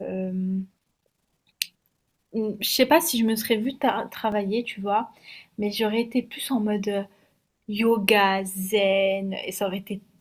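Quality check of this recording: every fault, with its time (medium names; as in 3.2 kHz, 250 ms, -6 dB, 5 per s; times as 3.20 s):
4.32 s: dropout 2.9 ms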